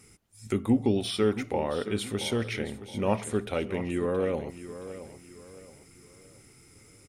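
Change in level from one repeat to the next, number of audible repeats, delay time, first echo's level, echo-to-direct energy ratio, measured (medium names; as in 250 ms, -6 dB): -9.0 dB, 3, 672 ms, -13.0 dB, -12.5 dB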